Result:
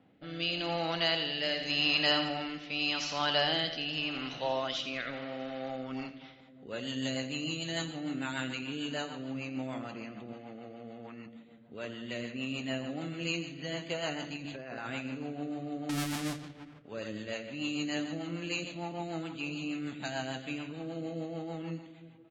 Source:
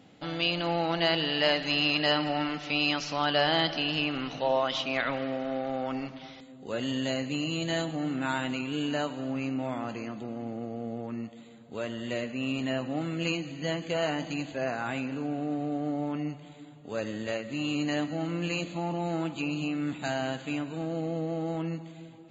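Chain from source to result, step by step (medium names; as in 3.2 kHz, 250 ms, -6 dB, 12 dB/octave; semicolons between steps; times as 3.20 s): 15.89–16.79 s: square wave that keeps the level; feedback delay 84 ms, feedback 40%, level -8.5 dB; rotary cabinet horn 0.85 Hz, later 6.7 Hz, at 5.57 s; 10.33–11.26 s: tilt shelf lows -6 dB, about 730 Hz; 14.36–14.91 s: compressor with a negative ratio -37 dBFS, ratio -1; treble shelf 2 kHz +8 dB; level-controlled noise filter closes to 1.7 kHz, open at -24 dBFS; trim -5.5 dB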